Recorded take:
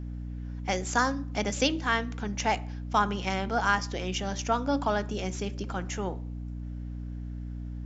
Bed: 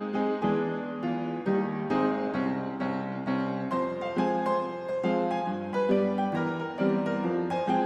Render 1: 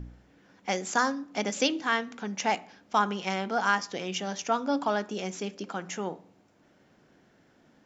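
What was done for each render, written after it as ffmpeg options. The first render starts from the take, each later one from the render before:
-af "bandreject=f=60:t=h:w=4,bandreject=f=120:t=h:w=4,bandreject=f=180:t=h:w=4,bandreject=f=240:t=h:w=4,bandreject=f=300:t=h:w=4"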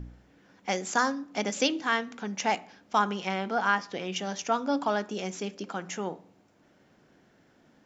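-filter_complex "[0:a]asettb=1/sr,asplit=3[a][b][c];[a]atrim=end=3.274[d];[b]atrim=start=3.27:end=4.16,asetpts=PTS-STARTPTS,afade=t=in:d=0.004:c=qsin,afade=t=out:st=0.886:d=0.004:c=qsin,acrossover=split=4400[e][f];[f]acompressor=threshold=-56dB:ratio=4:attack=1:release=60[g];[e][g]amix=inputs=2:normalize=0[h];[c]atrim=start=4.156[i];[d][h]acrossfade=d=0.004:c1=hsin:c2=qsin[j];[j][i]acrossfade=d=0.004:c1=qsin:c2=hsin"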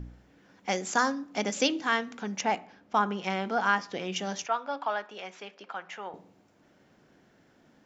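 -filter_complex "[0:a]asettb=1/sr,asplit=3[a][b][c];[a]atrim=end=2.414[d];[b]atrim=start=2.41:end=3.24,asetpts=PTS-STARTPTS,afade=t=in:d=0.004:c=qsin,afade=t=out:st=0.826:d=0.004:c=qsin,highshelf=f=3.8k:g=-11.5[e];[c]atrim=start=3.236[f];[d][e]acrossfade=d=0.004:c1=hsin:c2=qsin[g];[g][f]acrossfade=d=0.004:c1=qsin:c2=hsin,asettb=1/sr,asplit=3[h][i][j];[h]atrim=end=4.464[k];[i]atrim=start=4.46:end=6.14,asetpts=PTS-STARTPTS,afade=t=in:d=0.004:c=qsin,afade=t=out:st=1.676:d=0.004:c=qsin,acrossover=split=570 3800:gain=0.112 1 0.0794[l][m][n];[l][m][n]amix=inputs=3:normalize=0[o];[j]atrim=start=6.136[p];[k][o]acrossfade=d=0.004:c1=hsin:c2=qsin[q];[q][p]acrossfade=d=0.004:c1=qsin:c2=hsin"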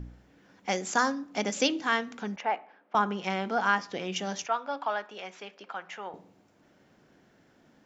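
-filter_complex "[0:a]asettb=1/sr,asplit=3[a][b][c];[a]atrim=end=2.364[d];[b]atrim=start=2.36:end=2.95,asetpts=PTS-STARTPTS,afade=t=in:d=0.004:c=qsin,afade=t=out:st=0.586:d=0.004:c=qsin,highpass=470,lowpass=2.2k[e];[c]atrim=start=2.946[f];[d][e]acrossfade=d=0.004:c1=hsin:c2=qsin[g];[g][f]acrossfade=d=0.004:c1=qsin:c2=hsin"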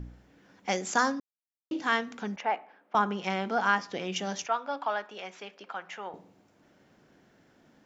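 -filter_complex "[0:a]asplit=3[a][b][c];[a]atrim=end=1.2,asetpts=PTS-STARTPTS,afade=t=out:st=1.196:d=0.004:c=hsin[d];[b]atrim=start=1.2:end=1.71,asetpts=PTS-STARTPTS,volume=0[e];[c]atrim=start=1.71,asetpts=PTS-STARTPTS,afade=t=in:d=0.004:c=hsin[f];[d][e][f]concat=n=3:v=0:a=1"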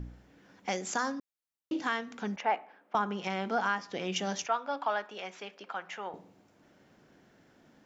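-af "alimiter=limit=-18.5dB:level=0:latency=1:release=329"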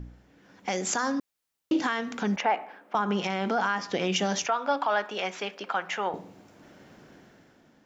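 -af "dynaudnorm=f=130:g=11:m=10dB,alimiter=limit=-16.5dB:level=0:latency=1:release=79"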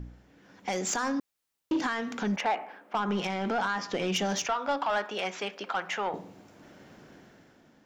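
-af "asoftclip=type=tanh:threshold=-21.5dB"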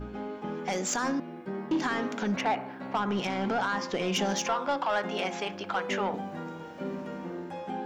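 -filter_complex "[1:a]volume=-9.5dB[a];[0:a][a]amix=inputs=2:normalize=0"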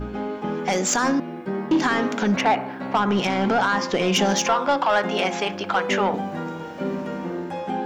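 -af "volume=8.5dB"

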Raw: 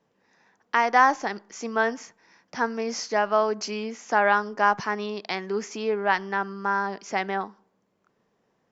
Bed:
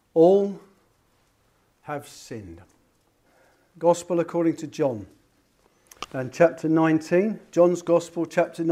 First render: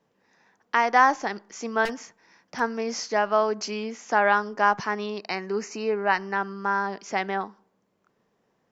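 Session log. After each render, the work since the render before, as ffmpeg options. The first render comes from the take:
-filter_complex "[0:a]asettb=1/sr,asplit=3[a][b][c];[a]atrim=end=1.854[d];[b]atrim=start=1.85:end=2.6,asetpts=PTS-STARTPTS,afade=t=in:d=0.004:c=qsin,afade=t=out:st=0.746:d=0.004:c=qsin,aeval=exprs='0.0631*(abs(mod(val(0)/0.0631+3,4)-2)-1)':c=same[e];[c]atrim=start=2.596[f];[d][e]acrossfade=d=0.004:c1=hsin:c2=qsin[g];[g][f]acrossfade=d=0.004:c1=qsin:c2=hsin,asettb=1/sr,asplit=3[h][i][j];[h]atrim=end=5.184[k];[i]atrim=start=5.18:end=6.36,asetpts=PTS-STARTPTS,afade=t=in:d=0.004:c=qsin,afade=t=out:st=1.176:d=0.004:c=qsin,asuperstop=centerf=3400:order=8:qfactor=5.2[l];[j]atrim=start=6.356[m];[k][l]acrossfade=d=0.004:c1=hsin:c2=qsin[n];[n][m]acrossfade=d=0.004:c1=qsin:c2=hsin"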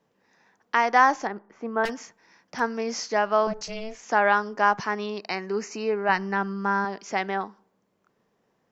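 -filter_complex "[0:a]asettb=1/sr,asplit=3[a][b][c];[a]atrim=end=1.274[d];[b]atrim=start=1.27:end=1.84,asetpts=PTS-STARTPTS,afade=t=in:d=0.004:c=qsin,afade=t=out:st=0.566:d=0.004:c=qsin,lowpass=1.4k[e];[c]atrim=start=1.836[f];[d][e]acrossfade=d=0.004:c1=hsin:c2=qsin[g];[g][f]acrossfade=d=0.004:c1=qsin:c2=hsin,asettb=1/sr,asplit=3[h][i][j];[h]atrim=end=3.474[k];[i]atrim=start=3.47:end=4.03,asetpts=PTS-STARTPTS,afade=t=in:d=0.004:c=qsin,afade=t=out:st=0.556:d=0.004:c=qsin,aeval=exprs='val(0)*sin(2*PI*220*n/s)':c=same[l];[j]atrim=start=4.026[m];[k][l]acrossfade=d=0.004:c1=hsin:c2=qsin[n];[n][m]acrossfade=d=0.004:c1=qsin:c2=hsin,asettb=1/sr,asplit=3[o][p][q];[o]atrim=end=6.094[r];[p]atrim=start=6.09:end=6.85,asetpts=PTS-STARTPTS,afade=t=in:d=0.004:c=qsin,afade=t=out:st=0.756:d=0.004:c=qsin,bass=f=250:g=9,treble=f=4k:g=0[s];[q]atrim=start=6.846[t];[r][s]acrossfade=d=0.004:c1=hsin:c2=qsin[u];[u][t]acrossfade=d=0.004:c1=qsin:c2=hsin"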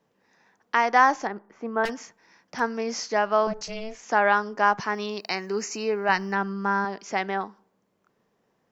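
-filter_complex "[0:a]asettb=1/sr,asplit=3[a][b][c];[a]atrim=end=4.944[d];[b]atrim=start=4.94:end=6.35,asetpts=PTS-STARTPTS,afade=t=in:d=0.004:c=qsin,afade=t=out:st=1.406:d=0.004:c=qsin,aemphasis=mode=production:type=50fm[e];[c]atrim=start=6.346[f];[d][e]acrossfade=d=0.004:c1=hsin:c2=qsin[g];[g][f]acrossfade=d=0.004:c1=qsin:c2=hsin"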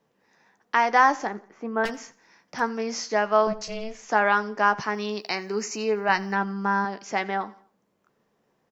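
-filter_complex "[0:a]asplit=2[a][b];[b]adelay=14,volume=-11.5dB[c];[a][c]amix=inputs=2:normalize=0,aecho=1:1:86|172|258:0.0891|0.0339|0.0129"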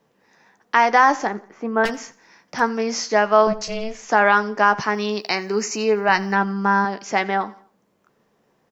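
-af "volume=6dB,alimiter=limit=-3dB:level=0:latency=1"

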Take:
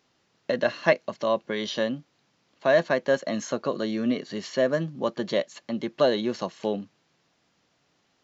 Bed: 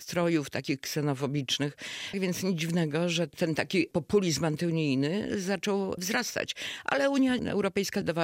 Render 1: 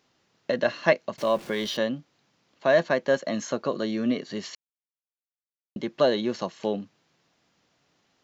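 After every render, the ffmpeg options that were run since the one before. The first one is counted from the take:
-filter_complex "[0:a]asettb=1/sr,asplit=3[a][b][c];[a]atrim=end=1.184[d];[b]atrim=start=1.18:end=1.77,asetpts=PTS-STARTPTS,afade=t=in:d=0.004:c=qsin,afade=t=out:st=0.586:d=0.004:c=qsin,aeval=exprs='val(0)+0.5*0.0106*sgn(val(0))':c=same[e];[c]atrim=start=1.766[f];[d][e]acrossfade=d=0.004:c1=hsin:c2=qsin[g];[g][f]acrossfade=d=0.004:c1=qsin:c2=hsin,asplit=3[h][i][j];[h]atrim=end=4.55,asetpts=PTS-STARTPTS,afade=t=out:st=4.546:d=0.004:c=hsin[k];[i]atrim=start=4.55:end=5.76,asetpts=PTS-STARTPTS,volume=0[l];[j]atrim=start=5.76,asetpts=PTS-STARTPTS,afade=t=in:d=0.004:c=hsin[m];[k][l][m]concat=n=3:v=0:a=1"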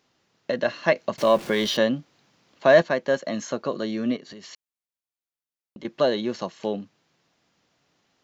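-filter_complex "[0:a]asettb=1/sr,asplit=3[a][b][c];[a]atrim=end=0.964[d];[b]atrim=start=0.96:end=2.82,asetpts=PTS-STARTPTS,afade=t=in:d=0.004:c=qsin,afade=t=out:st=1.856:d=0.004:c=qsin,acontrast=35[e];[c]atrim=start=2.816[f];[d][e]acrossfade=d=0.004:c1=hsin:c2=qsin[g];[g][f]acrossfade=d=0.004:c1=qsin:c2=hsin,asettb=1/sr,asplit=3[h][i][j];[h]atrim=end=4.164[k];[i]atrim=start=4.16:end=5.85,asetpts=PTS-STARTPTS,afade=t=in:d=0.004:c=qsin,afade=t=out:st=1.686:d=0.004:c=qsin,acompressor=threshold=-38dB:ratio=10:attack=3.2:release=140:knee=1:detection=peak[l];[j]atrim=start=5.846[m];[k][l]acrossfade=d=0.004:c1=hsin:c2=qsin[n];[n][m]acrossfade=d=0.004:c1=qsin:c2=hsin"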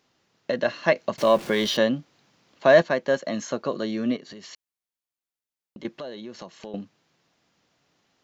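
-filter_complex "[0:a]asettb=1/sr,asplit=3[a][b][c];[a]atrim=end=5.894[d];[b]atrim=start=5.89:end=6.74,asetpts=PTS-STARTPTS,afade=t=in:d=0.004:c=qsin,afade=t=out:st=0.846:d=0.004:c=qsin,acompressor=threshold=-38dB:ratio=3:attack=3.2:release=140:knee=1:detection=peak[e];[c]atrim=start=6.736[f];[d][e]acrossfade=d=0.004:c1=hsin:c2=qsin[g];[g][f]acrossfade=d=0.004:c1=qsin:c2=hsin"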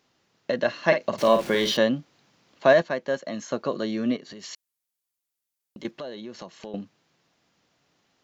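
-filter_complex "[0:a]asettb=1/sr,asplit=3[a][b][c];[a]atrim=end=0.854[d];[b]atrim=start=0.85:end=1.74,asetpts=PTS-STARTPTS,afade=t=in:d=0.004:c=qsin,afade=t=out:st=0.886:d=0.004:c=qsin,asplit=2[e][f];[f]adelay=49,volume=-8dB[g];[e][g]amix=inputs=2:normalize=0,atrim=end_sample=39249[h];[c]atrim=start=1.736[i];[d][h]acrossfade=d=0.004:c1=hsin:c2=qsin[j];[j][i]acrossfade=d=0.004:c1=qsin:c2=hsin,asettb=1/sr,asplit=3[k][l][m];[k]atrim=end=4.394[n];[l]atrim=start=4.39:end=5.91,asetpts=PTS-STARTPTS,afade=t=in:d=0.004:c=qsin,afade=t=out:st=1.516:d=0.004:c=qsin,aemphasis=mode=production:type=cd[o];[m]atrim=start=5.906[p];[n][o]acrossfade=d=0.004:c1=hsin:c2=qsin[q];[q][p]acrossfade=d=0.004:c1=qsin:c2=hsin,asplit=3[r][s][t];[r]atrim=end=2.732[u];[s]atrim=start=2.728:end=3.522,asetpts=PTS-STARTPTS,volume=-4dB[v];[t]atrim=start=3.518[w];[u][v]acrossfade=d=0.004:c1=hsin:c2=hsin[x];[x][w]acrossfade=d=0.004:c1=hsin:c2=hsin"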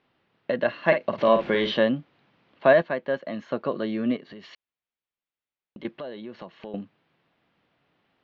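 -af "lowpass=f=3.3k:w=0.5412,lowpass=f=3.3k:w=1.3066"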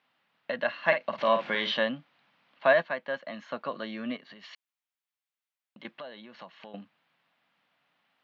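-af "highpass=260,equalizer=f=380:t=o:w=1:g=-15"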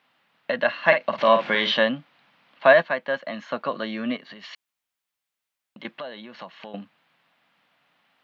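-af "volume=7dB,alimiter=limit=-2dB:level=0:latency=1"

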